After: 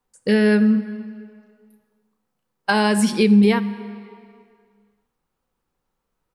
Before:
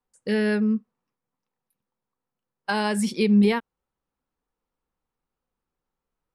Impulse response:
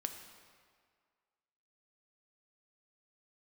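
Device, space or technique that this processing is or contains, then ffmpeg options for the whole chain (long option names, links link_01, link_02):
ducked reverb: -filter_complex "[0:a]asplit=3[link_01][link_02][link_03];[link_01]afade=type=out:start_time=0.75:duration=0.02[link_04];[link_02]asplit=2[link_05][link_06];[link_06]adelay=33,volume=-5dB[link_07];[link_05][link_07]amix=inputs=2:normalize=0,afade=type=in:start_time=0.75:duration=0.02,afade=type=out:start_time=2.7:duration=0.02[link_08];[link_03]afade=type=in:start_time=2.7:duration=0.02[link_09];[link_04][link_08][link_09]amix=inputs=3:normalize=0,asplit=3[link_10][link_11][link_12];[1:a]atrim=start_sample=2205[link_13];[link_11][link_13]afir=irnorm=-1:irlink=0[link_14];[link_12]apad=whole_len=280002[link_15];[link_14][link_15]sidechaincompress=threshold=-23dB:ratio=8:attack=37:release=1120,volume=4.5dB[link_16];[link_10][link_16]amix=inputs=2:normalize=0"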